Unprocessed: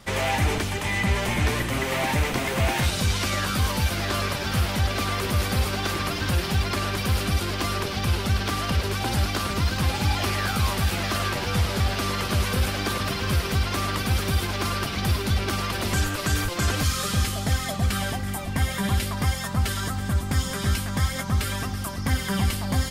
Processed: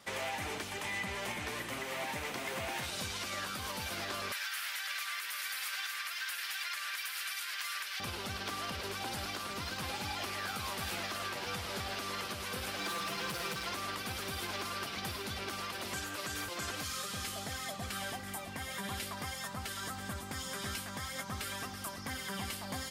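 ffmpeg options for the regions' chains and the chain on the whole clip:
-filter_complex "[0:a]asettb=1/sr,asplit=3[s0][s1][s2];[s0]atrim=end=4.324[s3];[s1]atrim=start=4.32:end=8,asetpts=PTS-STARTPTS,afade=t=in:d=0.004:c=qsin,afade=t=out:st=3.676:d=0.004:c=qsin,highpass=f=1700:t=q:w=2,highshelf=f=9100:g=9.5[s4];[s2]atrim=start=7.996[s5];[s3][s4]acrossfade=d=0.004:c1=hsin:c2=qsin[s6];[s6][s5]acrossfade=d=0.004:c1=qsin:c2=hsin,asettb=1/sr,asplit=3[s7][s8][s9];[s7]atrim=end=12.784[s10];[s8]atrim=start=12.78:end=13.71,asetpts=PTS-STARTPTS,afade=t=in:d=0.004:c=qsin,afade=t=out:st=0.926:d=0.004:c=qsin,aecho=1:1:5.9:0.87,atrim=end_sample=41013,asoftclip=type=hard:threshold=0.0708[s11];[s9]atrim=start=13.706[s12];[s10][s11]acrossfade=d=0.004:c1=hsin:c2=qsin[s13];[s13][s12]acrossfade=d=0.004:c1=qsin:c2=hsin,highpass=f=410:p=1,alimiter=limit=0.0841:level=0:latency=1:release=370,volume=0.473"

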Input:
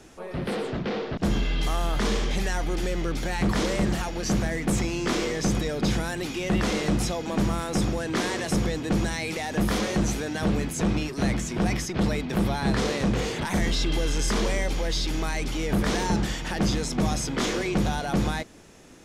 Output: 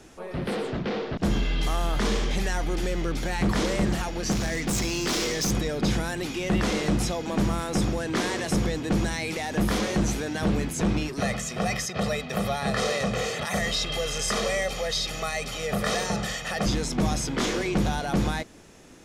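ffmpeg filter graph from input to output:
-filter_complex "[0:a]asettb=1/sr,asplit=3[s0][s1][s2];[s0]atrim=end=4.324[s3];[s1]atrim=start=4.32:end=5.51,asetpts=PTS-STARTPTS,afade=t=in:d=0.004:c=qsin,afade=t=out:st=1.186:d=0.004:c=qsin,equalizer=f=5400:t=o:w=1.7:g=9.5,volume=14.1,asoftclip=hard,volume=0.0708[s4];[s2]atrim=start=5.506[s5];[s3][s4]acrossfade=d=0.004:c1=hsin:c2=qsin[s6];[s6][s5]acrossfade=d=0.004:c1=qsin:c2=hsin,asettb=1/sr,asplit=3[s7][s8][s9];[s7]atrim=end=11.204[s10];[s8]atrim=start=11.2:end=16.66,asetpts=PTS-STARTPTS,afade=t=in:d=0.004:c=qsin,afade=t=out:st=5.456:d=0.004:c=qsin,highpass=f=270:p=1,aecho=1:1:1.6:0.83,atrim=end_sample=240786[s11];[s9]atrim=start=16.656[s12];[s10][s11]acrossfade=d=0.004:c1=hsin:c2=qsin[s13];[s13][s12]acrossfade=d=0.004:c1=qsin:c2=hsin"

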